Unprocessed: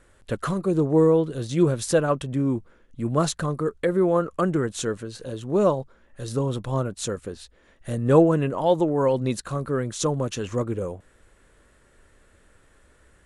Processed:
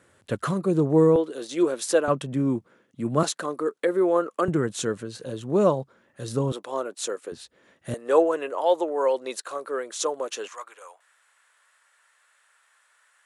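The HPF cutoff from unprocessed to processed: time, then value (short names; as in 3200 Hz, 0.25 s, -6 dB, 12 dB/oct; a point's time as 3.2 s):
HPF 24 dB/oct
93 Hz
from 1.16 s 300 Hz
from 2.08 s 130 Hz
from 3.23 s 270 Hz
from 4.48 s 110 Hz
from 6.52 s 340 Hz
from 7.32 s 110 Hz
from 7.94 s 410 Hz
from 10.48 s 890 Hz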